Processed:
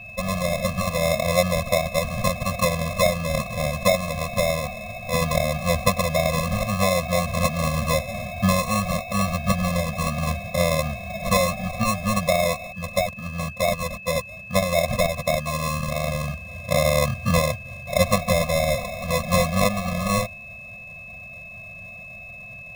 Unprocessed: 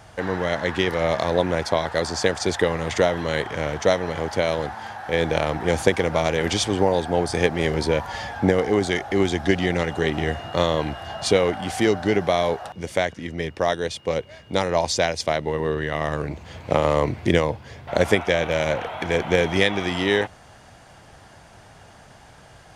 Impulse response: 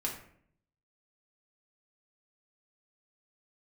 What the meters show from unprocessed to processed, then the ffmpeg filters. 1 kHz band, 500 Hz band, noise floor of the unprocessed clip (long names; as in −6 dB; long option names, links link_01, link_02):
+1.0 dB, −2.0 dB, −48 dBFS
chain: -af "acrusher=samples=29:mix=1:aa=0.000001,aeval=exprs='val(0)+0.01*sin(2*PI*2600*n/s)':channel_layout=same,afftfilt=real='re*eq(mod(floor(b*sr/1024/250),2),0)':imag='im*eq(mod(floor(b*sr/1024/250),2),0)':win_size=1024:overlap=0.75,volume=2.5dB"